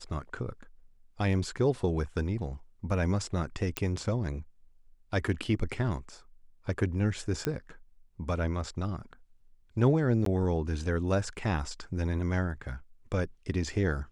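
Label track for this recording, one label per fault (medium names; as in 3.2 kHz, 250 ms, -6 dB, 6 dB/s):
3.770000	3.770000	pop -13 dBFS
7.450000	7.450000	pop -15 dBFS
10.250000	10.260000	dropout 13 ms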